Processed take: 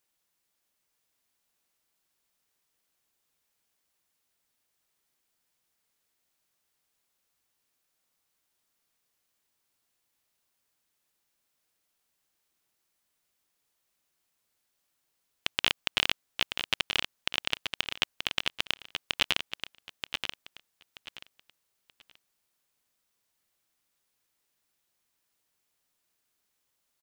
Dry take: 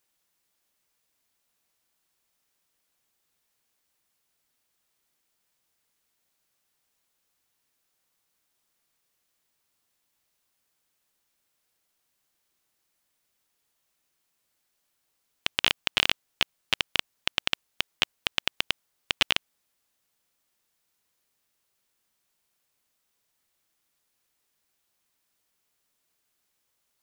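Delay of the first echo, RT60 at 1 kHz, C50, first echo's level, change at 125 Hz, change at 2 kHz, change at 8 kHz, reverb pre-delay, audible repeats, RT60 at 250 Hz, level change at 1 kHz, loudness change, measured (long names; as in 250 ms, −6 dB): 930 ms, no reverb audible, no reverb audible, −7.0 dB, −2.0 dB, −2.0 dB, −2.0 dB, no reverb audible, 3, no reverb audible, −2.0 dB, −3.0 dB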